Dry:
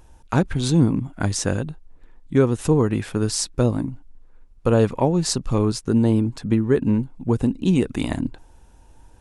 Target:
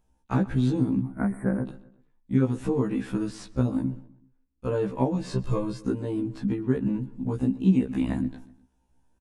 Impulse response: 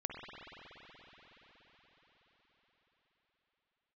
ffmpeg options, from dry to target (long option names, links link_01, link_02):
-filter_complex "[0:a]equalizer=frequency=220:width=2.4:gain=9.5,agate=range=-17dB:threshold=-36dB:ratio=16:detection=peak,acrossover=split=2700[link_01][link_02];[link_02]acompressor=threshold=-44dB:ratio=4:attack=1:release=60[link_03];[link_01][link_03]amix=inputs=2:normalize=0,asettb=1/sr,asplit=3[link_04][link_05][link_06];[link_04]atrim=end=5.214[link_07];[link_05]atrim=start=5.21:end=5.88,asetpts=PTS-STARTPTS,afade=type=in:duration=0.004:curve=qsin,afade=type=out:start_time=0.666:duration=0.004:curve=qsin,aecho=1:1:1.9:0.76,atrim=end_sample=29547[link_08];[link_06]atrim=start=5.876[link_09];[link_07][link_08]acrossfade=duration=0.004:curve1=hsin:curve2=qsin[link_10];[link_10][link_09]acrossfade=duration=0.004:curve1=qsin:curve2=hsin,acompressor=threshold=-22dB:ratio=2,asettb=1/sr,asplit=3[link_11][link_12][link_13];[link_11]atrim=end=1.024[link_14];[link_12]atrim=start=1.02:end=1.68,asetpts=PTS-STARTPTS,afade=type=in:duration=0.004:curve=qsin,afade=type=out:start_time=0.656:duration=0.004:curve=qsin,asuperstop=centerf=4500:order=20:qfactor=0.73[link_15];[link_13]atrim=start=1.676[link_16];[link_14][link_15]acrossfade=duration=0.004:curve1=hsin:curve2=qsin[link_17];[link_17][link_16]acrossfade=duration=0.004:curve1=qsin:curve2=hsin,asettb=1/sr,asplit=3[link_18][link_19][link_20];[link_18]atrim=end=3.904[link_21];[link_19]atrim=start=3.9:end=4.69,asetpts=PTS-STARTPTS,afade=type=in:duration=0.004:curve=qsin,afade=type=out:start_time=0.786:duration=0.004:curve=qsin,tremolo=f=250:d=0.462[link_22];[link_20]atrim=start=4.686[link_23];[link_21][link_22]acrossfade=duration=0.004:curve1=hsin:curve2=qsin[link_24];[link_24][link_23]acrossfade=duration=0.004:curve1=qsin:curve2=hsin,asplit=2[link_25][link_26];[link_26]adelay=126,lowpass=frequency=4300:poles=1,volume=-19dB,asplit=2[link_27][link_28];[link_28]adelay=126,lowpass=frequency=4300:poles=1,volume=0.44,asplit=2[link_29][link_30];[link_30]adelay=126,lowpass=frequency=4300:poles=1,volume=0.44[link_31];[link_25][link_27][link_29][link_31]amix=inputs=4:normalize=0,afftfilt=real='re*1.73*eq(mod(b,3),0)':imag='im*1.73*eq(mod(b,3),0)':win_size=2048:overlap=0.75"